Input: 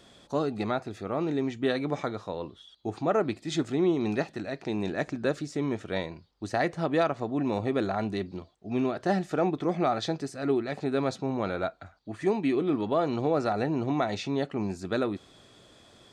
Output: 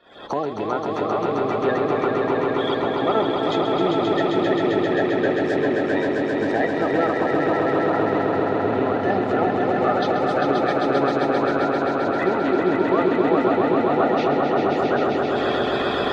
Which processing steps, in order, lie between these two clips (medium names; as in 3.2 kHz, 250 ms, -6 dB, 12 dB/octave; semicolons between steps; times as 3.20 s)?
coarse spectral quantiser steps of 30 dB; recorder AGC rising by 71 dB/s; bass shelf 400 Hz +4.5 dB; waveshaping leveller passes 1; three-band isolator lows -16 dB, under 290 Hz, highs -21 dB, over 3.5 kHz; echo with a slow build-up 132 ms, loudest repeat 5, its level -4.5 dB